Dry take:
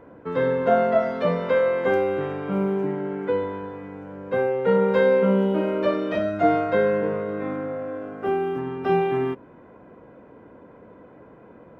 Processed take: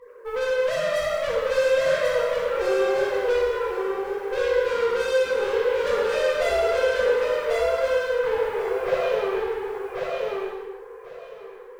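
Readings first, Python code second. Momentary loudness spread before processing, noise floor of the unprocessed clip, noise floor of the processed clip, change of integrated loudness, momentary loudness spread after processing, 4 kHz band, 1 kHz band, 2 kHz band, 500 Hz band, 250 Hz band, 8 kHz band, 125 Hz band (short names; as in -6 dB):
11 LU, -49 dBFS, -42 dBFS, -0.5 dB, 10 LU, +9.5 dB, -2.5 dB, +4.0 dB, +1.0 dB, -12.5 dB, n/a, under -10 dB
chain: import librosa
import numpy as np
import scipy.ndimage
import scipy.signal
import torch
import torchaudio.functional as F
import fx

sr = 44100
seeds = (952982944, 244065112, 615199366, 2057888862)

p1 = fx.sine_speech(x, sr)
p2 = fx.high_shelf(p1, sr, hz=2900.0, db=11.5)
p3 = fx.rider(p2, sr, range_db=3, speed_s=0.5)
p4 = p2 + (p3 * 10.0 ** (-2.5 / 20.0))
p5 = fx.quant_float(p4, sr, bits=4)
p6 = fx.tube_stage(p5, sr, drive_db=26.0, bias=0.65)
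p7 = p6 + fx.echo_feedback(p6, sr, ms=1092, feedback_pct=18, wet_db=-3.0, dry=0)
p8 = fx.rev_gated(p7, sr, seeds[0], gate_ms=440, shape='falling', drr_db=-5.0)
y = p8 * 10.0 ** (-2.5 / 20.0)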